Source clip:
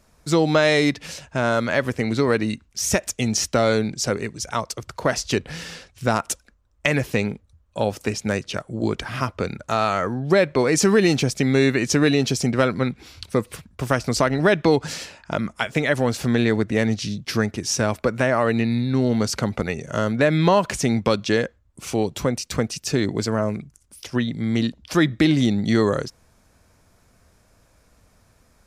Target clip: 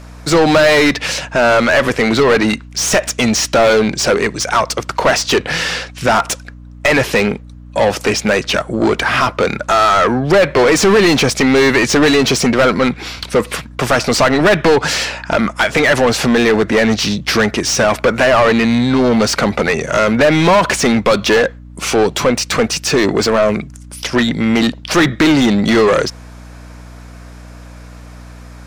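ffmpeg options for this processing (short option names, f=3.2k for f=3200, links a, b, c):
-filter_complex "[0:a]asplit=2[a][b];[b]highpass=f=720:p=1,volume=27dB,asoftclip=type=tanh:threshold=-4dB[c];[a][c]amix=inputs=2:normalize=0,lowpass=f=3k:p=1,volume=-6dB,aeval=exprs='val(0)+0.0178*(sin(2*PI*60*n/s)+sin(2*PI*2*60*n/s)/2+sin(2*PI*3*60*n/s)/3+sin(2*PI*4*60*n/s)/4+sin(2*PI*5*60*n/s)/5)':c=same,volume=1.5dB"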